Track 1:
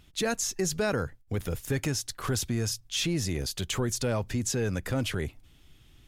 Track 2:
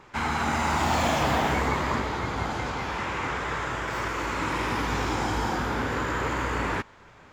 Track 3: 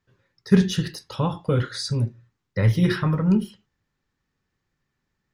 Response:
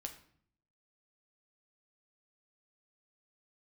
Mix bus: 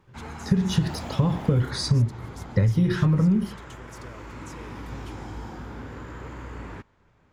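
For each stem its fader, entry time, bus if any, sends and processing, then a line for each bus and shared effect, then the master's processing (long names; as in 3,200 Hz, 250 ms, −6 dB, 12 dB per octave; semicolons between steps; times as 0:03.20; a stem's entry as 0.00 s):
−18.5 dB, 0.00 s, no bus, no send, no processing
−16.0 dB, 0.00 s, bus A, no send, no processing
+0.5 dB, 0.00 s, bus A, no send, downward compressor, threshold −20 dBFS, peak gain reduction 10.5 dB
bus A: 0.0 dB, low-shelf EQ 370 Hz +11 dB; downward compressor 6 to 1, threshold −17 dBFS, peak gain reduction 8 dB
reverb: not used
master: no processing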